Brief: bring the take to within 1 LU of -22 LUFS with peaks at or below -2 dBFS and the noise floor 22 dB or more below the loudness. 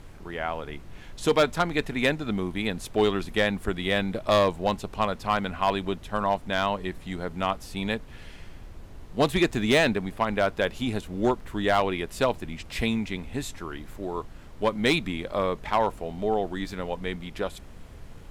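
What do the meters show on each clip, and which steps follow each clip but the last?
clipped 0.4%; flat tops at -14.0 dBFS; noise floor -45 dBFS; noise floor target -49 dBFS; loudness -27.0 LUFS; peak -14.0 dBFS; loudness target -22.0 LUFS
-> clip repair -14 dBFS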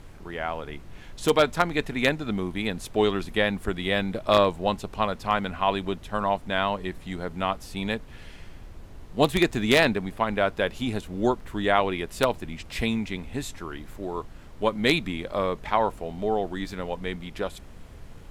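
clipped 0.0%; noise floor -45 dBFS; noise floor target -49 dBFS
-> noise print and reduce 6 dB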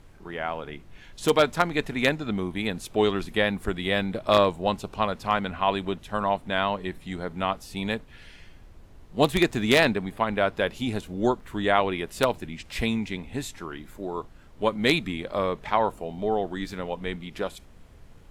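noise floor -50 dBFS; loudness -26.5 LUFS; peak -5.0 dBFS; loudness target -22.0 LUFS
-> gain +4.5 dB; limiter -2 dBFS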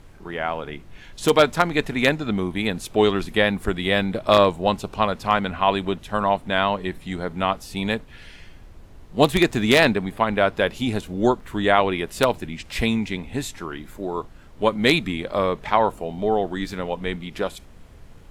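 loudness -22.5 LUFS; peak -2.0 dBFS; noise floor -45 dBFS

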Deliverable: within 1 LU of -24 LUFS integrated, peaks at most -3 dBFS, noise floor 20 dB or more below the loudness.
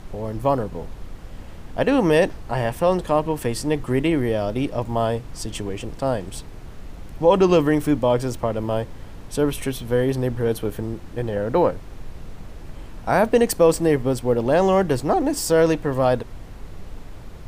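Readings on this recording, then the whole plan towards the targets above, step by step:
noise floor -39 dBFS; noise floor target -42 dBFS; loudness -21.5 LUFS; peak -4.5 dBFS; loudness target -24.0 LUFS
-> noise print and reduce 6 dB; gain -2.5 dB

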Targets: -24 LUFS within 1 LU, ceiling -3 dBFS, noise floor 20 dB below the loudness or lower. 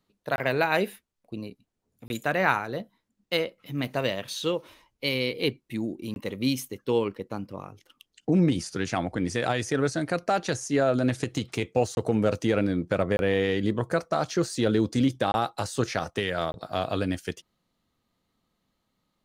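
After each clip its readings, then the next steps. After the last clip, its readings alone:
dropouts 7; longest dropout 21 ms; loudness -27.5 LUFS; peak -7.0 dBFS; loudness target -24.0 LUFS
-> interpolate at 0.36/2.08/6.14/11.95/13.17/15.32/16.52, 21 ms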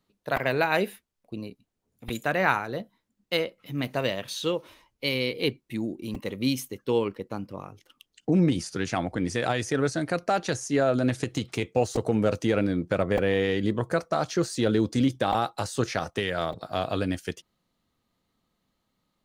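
dropouts 0; loudness -27.5 LUFS; peak -7.0 dBFS; loudness target -24.0 LUFS
-> gain +3.5 dB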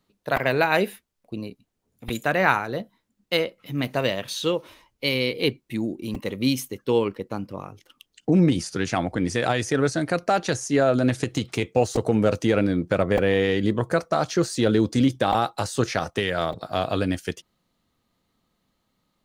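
loudness -24.0 LUFS; peak -3.5 dBFS; noise floor -75 dBFS

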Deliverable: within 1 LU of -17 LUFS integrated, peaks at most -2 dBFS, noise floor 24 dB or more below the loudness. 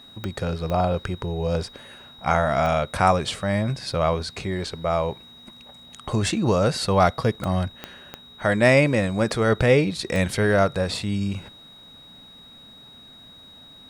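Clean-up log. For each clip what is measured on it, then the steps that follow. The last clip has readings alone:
clicks 7; steady tone 3800 Hz; tone level -45 dBFS; loudness -23.0 LUFS; peak -4.0 dBFS; loudness target -17.0 LUFS
-> de-click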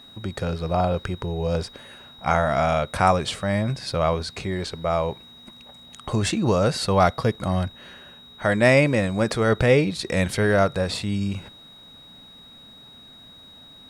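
clicks 0; steady tone 3800 Hz; tone level -45 dBFS
-> notch 3800 Hz, Q 30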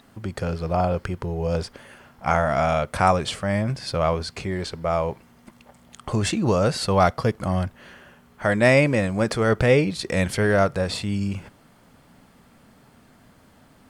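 steady tone none; loudness -23.0 LUFS; peak -4.0 dBFS; loudness target -17.0 LUFS
-> gain +6 dB; limiter -2 dBFS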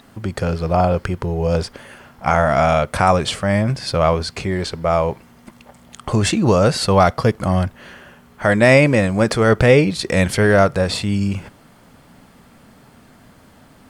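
loudness -17.0 LUFS; peak -2.0 dBFS; noise floor -49 dBFS

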